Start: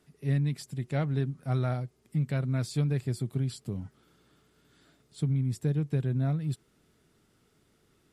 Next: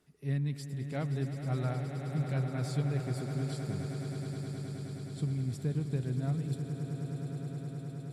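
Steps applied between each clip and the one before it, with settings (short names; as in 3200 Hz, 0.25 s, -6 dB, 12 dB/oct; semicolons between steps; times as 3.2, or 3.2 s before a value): swelling echo 0.105 s, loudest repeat 8, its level -12 dB; gain -5 dB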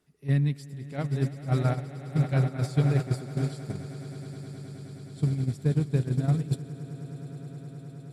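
gate -32 dBFS, range -10 dB; gain +8.5 dB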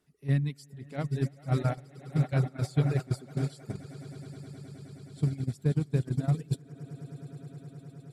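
reverb removal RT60 0.86 s; gain -1.5 dB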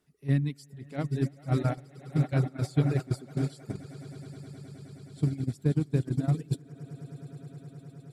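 dynamic EQ 300 Hz, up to +6 dB, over -48 dBFS, Q 2.9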